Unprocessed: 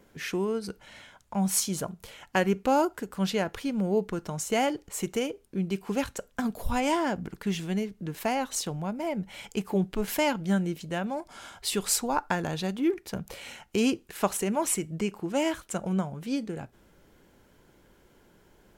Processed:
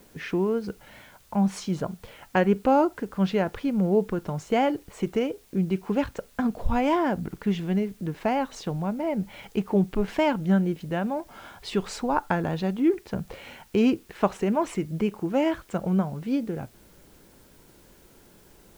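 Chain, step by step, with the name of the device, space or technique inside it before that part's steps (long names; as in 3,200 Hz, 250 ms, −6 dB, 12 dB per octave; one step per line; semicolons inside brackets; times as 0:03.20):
cassette deck with a dirty head (head-to-tape spacing loss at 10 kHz 26 dB; tape wow and flutter; white noise bed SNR 33 dB)
level +5 dB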